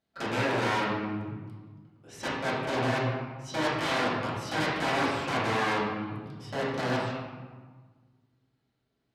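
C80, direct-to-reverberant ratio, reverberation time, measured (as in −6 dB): 2.0 dB, −12.0 dB, 1.5 s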